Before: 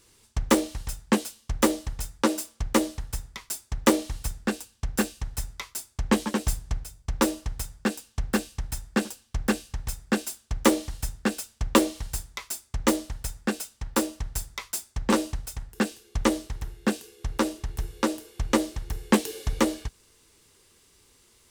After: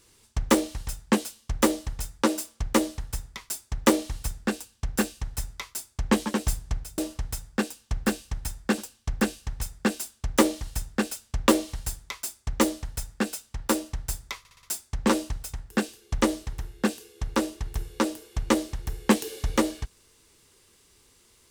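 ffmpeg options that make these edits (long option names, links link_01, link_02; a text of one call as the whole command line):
ffmpeg -i in.wav -filter_complex "[0:a]asplit=6[link_01][link_02][link_03][link_04][link_05][link_06];[link_01]atrim=end=6.982[link_07];[link_02]atrim=start=7.248:end=14.722[link_08];[link_03]atrim=start=14.658:end=14.722[link_09];[link_04]atrim=start=14.658:end=14.722[link_10];[link_05]atrim=start=14.658:end=14.722[link_11];[link_06]atrim=start=14.658[link_12];[link_07][link_08]acrossfade=duration=0.004:curve1=hsin:curve2=hsin[link_13];[link_13][link_09]acrossfade=duration=0.004:curve1=hsin:curve2=hsin[link_14];[link_14][link_10]acrossfade=duration=0.004:curve1=hsin:curve2=hsin[link_15];[link_15][link_11]acrossfade=duration=0.004:curve1=hsin:curve2=hsin[link_16];[link_16][link_12]acrossfade=duration=0.004:curve1=hsin:curve2=hsin" out.wav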